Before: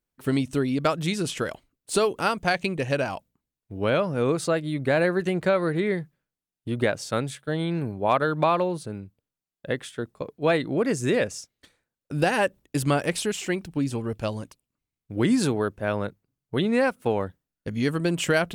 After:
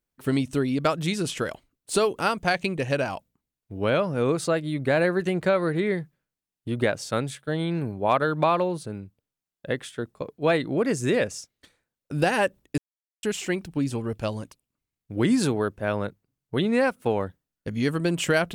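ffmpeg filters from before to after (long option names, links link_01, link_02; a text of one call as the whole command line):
ffmpeg -i in.wav -filter_complex "[0:a]asplit=3[link_01][link_02][link_03];[link_01]atrim=end=12.78,asetpts=PTS-STARTPTS,afade=type=out:start_time=12.776:duration=0.004:curve=hsin[link_04];[link_02]atrim=start=12.78:end=13.23,asetpts=PTS-STARTPTS,volume=0[link_05];[link_03]atrim=start=13.23,asetpts=PTS-STARTPTS,afade=type=in:duration=0.004:curve=hsin[link_06];[link_04][link_05][link_06]concat=n=3:v=0:a=1" out.wav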